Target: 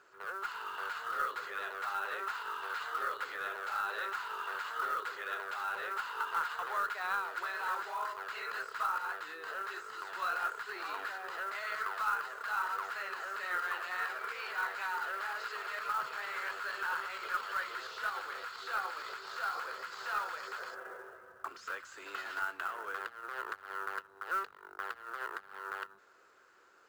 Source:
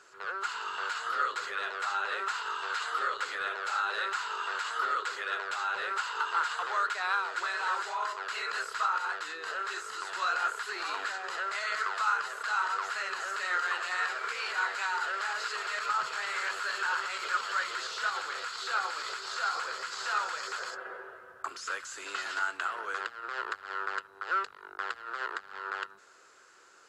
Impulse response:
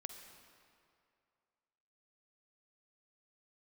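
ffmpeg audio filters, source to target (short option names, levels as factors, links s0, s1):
-af "aemphasis=mode=reproduction:type=75fm,aeval=exprs='0.119*(cos(1*acos(clip(val(0)/0.119,-1,1)))-cos(1*PI/2))+0.00299*(cos(2*acos(clip(val(0)/0.119,-1,1)))-cos(2*PI/2))':c=same,acrusher=bits=5:mode=log:mix=0:aa=0.000001,volume=0.631"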